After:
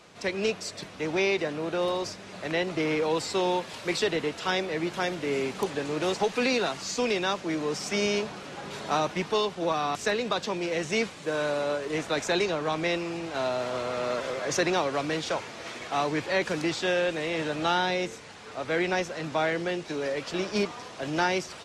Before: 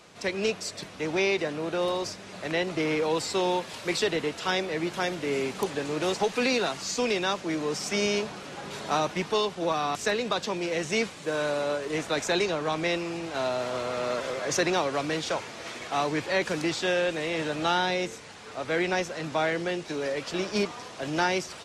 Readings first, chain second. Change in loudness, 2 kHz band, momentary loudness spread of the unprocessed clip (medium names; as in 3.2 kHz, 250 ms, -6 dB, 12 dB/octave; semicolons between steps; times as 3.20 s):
0.0 dB, -0.5 dB, 6 LU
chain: treble shelf 7.4 kHz -4.5 dB